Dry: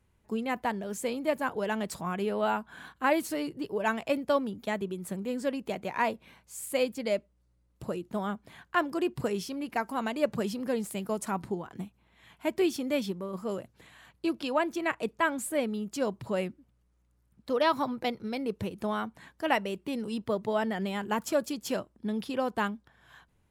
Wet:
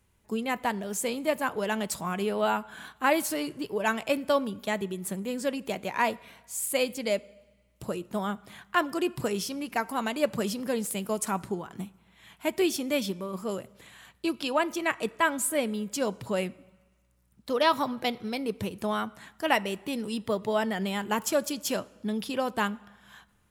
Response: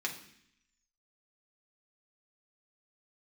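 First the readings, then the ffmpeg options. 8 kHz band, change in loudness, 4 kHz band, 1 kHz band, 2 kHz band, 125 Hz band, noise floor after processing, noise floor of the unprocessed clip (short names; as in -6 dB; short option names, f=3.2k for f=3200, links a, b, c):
+8.0 dB, +2.0 dB, +5.0 dB, +2.0 dB, +3.0 dB, +1.5 dB, -66 dBFS, -70 dBFS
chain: -filter_complex "[0:a]highshelf=f=3.3k:g=8.5,asplit=2[a][b];[1:a]atrim=start_sample=2205,asetrate=24255,aresample=44100[c];[b][c]afir=irnorm=-1:irlink=0,volume=-21.5dB[d];[a][d]amix=inputs=2:normalize=0"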